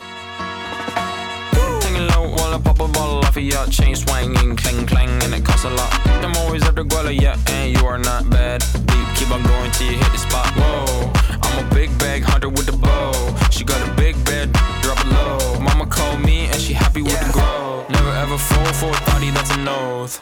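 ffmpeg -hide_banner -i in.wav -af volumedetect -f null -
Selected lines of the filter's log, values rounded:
mean_volume: -16.0 dB
max_volume: -5.1 dB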